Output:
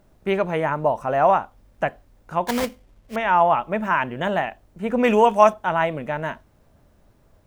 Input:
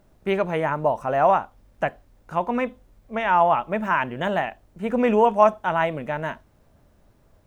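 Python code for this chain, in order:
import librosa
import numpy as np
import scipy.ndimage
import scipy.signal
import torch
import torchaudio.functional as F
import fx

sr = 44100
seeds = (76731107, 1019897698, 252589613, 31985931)

y = fx.sample_hold(x, sr, seeds[0], rate_hz=2700.0, jitter_pct=20, at=(2.47, 3.16))
y = fx.high_shelf(y, sr, hz=fx.line((5.03, 2200.0), (5.52, 2800.0)), db=11.0, at=(5.03, 5.52), fade=0.02)
y = y * librosa.db_to_amplitude(1.0)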